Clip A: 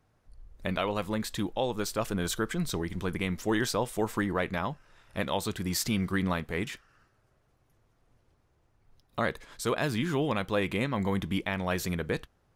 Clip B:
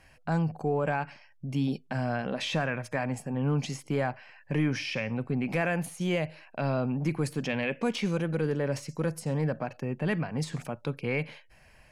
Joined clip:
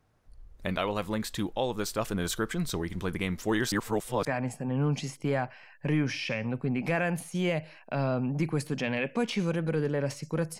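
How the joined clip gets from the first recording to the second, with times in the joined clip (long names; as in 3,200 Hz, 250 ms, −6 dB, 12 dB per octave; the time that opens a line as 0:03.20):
clip A
0:03.72–0:04.25: reverse
0:04.25: continue with clip B from 0:02.91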